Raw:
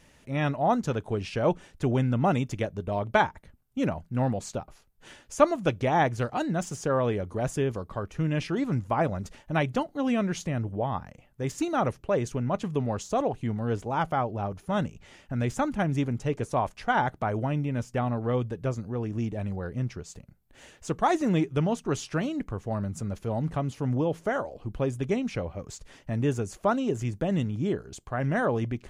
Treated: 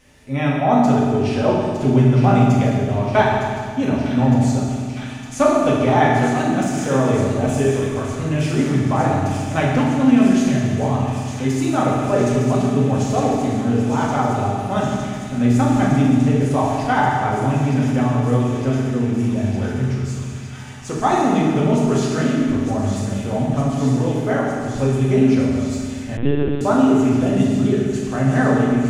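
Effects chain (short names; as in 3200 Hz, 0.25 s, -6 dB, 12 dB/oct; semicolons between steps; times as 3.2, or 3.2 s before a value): thin delay 0.909 s, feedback 85%, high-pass 2700 Hz, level -7 dB; reverb RT60 2.0 s, pre-delay 4 ms, DRR -5.5 dB; 26.17–26.61 LPC vocoder at 8 kHz pitch kept; gain +1.5 dB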